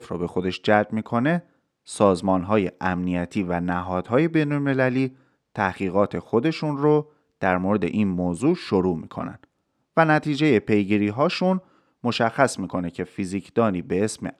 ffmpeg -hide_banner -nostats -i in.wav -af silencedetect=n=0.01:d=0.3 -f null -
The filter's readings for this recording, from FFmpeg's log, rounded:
silence_start: 1.40
silence_end: 1.88 | silence_duration: 0.47
silence_start: 5.10
silence_end: 5.56 | silence_duration: 0.46
silence_start: 7.03
silence_end: 7.42 | silence_duration: 0.38
silence_start: 9.44
silence_end: 9.97 | silence_duration: 0.53
silence_start: 11.60
silence_end: 12.04 | silence_duration: 0.44